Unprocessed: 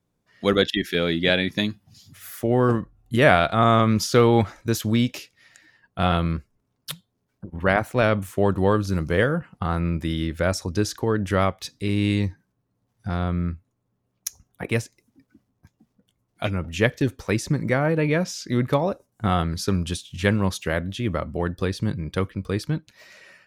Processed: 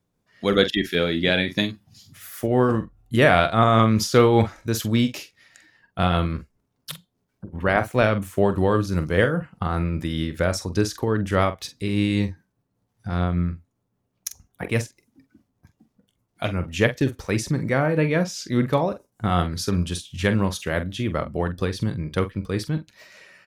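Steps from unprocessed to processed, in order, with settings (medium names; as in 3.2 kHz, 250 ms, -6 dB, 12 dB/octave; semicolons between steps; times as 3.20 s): tremolo 5 Hz, depth 31%; doubling 45 ms -11 dB; trim +1.5 dB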